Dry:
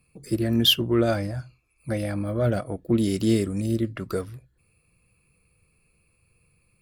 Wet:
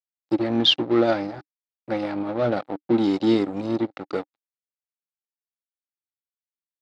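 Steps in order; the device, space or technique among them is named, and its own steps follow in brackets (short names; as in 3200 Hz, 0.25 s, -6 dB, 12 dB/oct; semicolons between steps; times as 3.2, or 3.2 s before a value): blown loudspeaker (crossover distortion -33 dBFS; speaker cabinet 160–5200 Hz, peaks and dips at 300 Hz +10 dB, 530 Hz +5 dB, 810 Hz +10 dB, 1300 Hz +4 dB, 2100 Hz +3 dB, 3900 Hz +6 dB)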